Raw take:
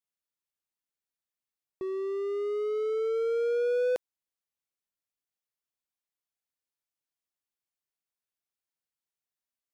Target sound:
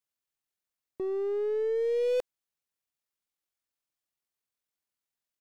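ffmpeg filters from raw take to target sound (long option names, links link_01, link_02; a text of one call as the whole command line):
ffmpeg -i in.wav -af "atempo=1.8,aeval=exprs='0.0891*(cos(1*acos(clip(val(0)/0.0891,-1,1)))-cos(1*PI/2))+0.00126*(cos(4*acos(clip(val(0)/0.0891,-1,1)))-cos(4*PI/2))+0.00631*(cos(5*acos(clip(val(0)/0.0891,-1,1)))-cos(5*PI/2))+0.00224*(cos(8*acos(clip(val(0)/0.0891,-1,1)))-cos(8*PI/2))':channel_layout=same" out.wav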